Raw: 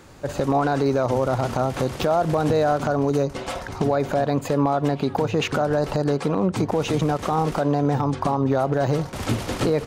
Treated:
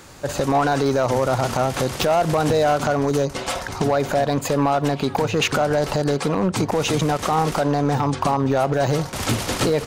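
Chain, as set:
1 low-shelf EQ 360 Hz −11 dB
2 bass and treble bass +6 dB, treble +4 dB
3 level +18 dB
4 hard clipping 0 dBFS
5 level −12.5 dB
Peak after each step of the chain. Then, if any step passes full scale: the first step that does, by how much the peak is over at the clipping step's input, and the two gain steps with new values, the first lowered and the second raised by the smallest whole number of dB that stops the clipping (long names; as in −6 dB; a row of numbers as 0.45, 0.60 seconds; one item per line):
−12.0, −11.5, +6.5, 0.0, −12.5 dBFS
step 3, 6.5 dB
step 3 +11 dB, step 5 −5.5 dB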